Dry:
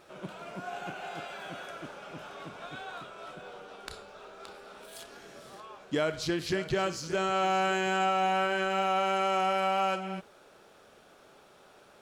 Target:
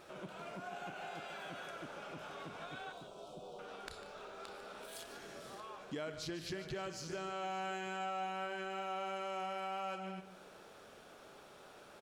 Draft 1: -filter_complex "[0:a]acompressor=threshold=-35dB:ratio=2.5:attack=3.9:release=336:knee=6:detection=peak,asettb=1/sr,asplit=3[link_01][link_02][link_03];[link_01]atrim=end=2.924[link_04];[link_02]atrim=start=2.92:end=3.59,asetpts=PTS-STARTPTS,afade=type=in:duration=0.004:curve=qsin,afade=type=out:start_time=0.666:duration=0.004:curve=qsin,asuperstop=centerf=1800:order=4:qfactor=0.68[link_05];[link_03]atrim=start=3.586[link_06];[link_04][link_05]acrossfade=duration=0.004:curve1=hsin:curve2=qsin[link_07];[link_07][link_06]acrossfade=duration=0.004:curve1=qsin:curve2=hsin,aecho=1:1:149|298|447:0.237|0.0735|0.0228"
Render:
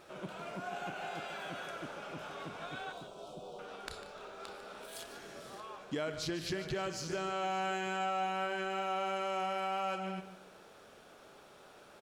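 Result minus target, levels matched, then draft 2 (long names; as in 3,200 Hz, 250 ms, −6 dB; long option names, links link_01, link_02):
downward compressor: peak gain reduction −5.5 dB
-filter_complex "[0:a]acompressor=threshold=-44dB:ratio=2.5:attack=3.9:release=336:knee=6:detection=peak,asettb=1/sr,asplit=3[link_01][link_02][link_03];[link_01]atrim=end=2.924[link_04];[link_02]atrim=start=2.92:end=3.59,asetpts=PTS-STARTPTS,afade=type=in:duration=0.004:curve=qsin,afade=type=out:start_time=0.666:duration=0.004:curve=qsin,asuperstop=centerf=1800:order=4:qfactor=0.68[link_05];[link_03]atrim=start=3.586[link_06];[link_04][link_05]acrossfade=duration=0.004:curve1=hsin:curve2=qsin[link_07];[link_07][link_06]acrossfade=duration=0.004:curve1=qsin:curve2=hsin,aecho=1:1:149|298|447:0.237|0.0735|0.0228"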